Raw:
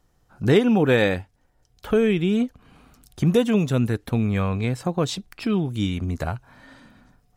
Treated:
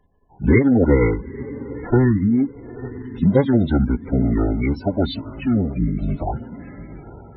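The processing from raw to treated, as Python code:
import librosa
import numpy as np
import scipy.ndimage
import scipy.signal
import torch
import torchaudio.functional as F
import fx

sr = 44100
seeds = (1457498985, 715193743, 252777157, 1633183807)

y = fx.echo_diffused(x, sr, ms=902, feedback_pct=42, wet_db=-15)
y = fx.spec_topn(y, sr, count=64)
y = fx.pitch_keep_formants(y, sr, semitones=-10.0)
y = y * 10.0 ** (4.0 / 20.0)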